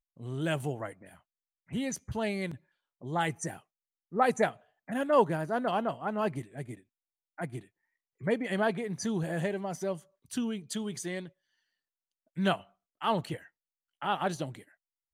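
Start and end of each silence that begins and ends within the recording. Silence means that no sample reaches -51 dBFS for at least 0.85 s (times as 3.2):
11.29–12.36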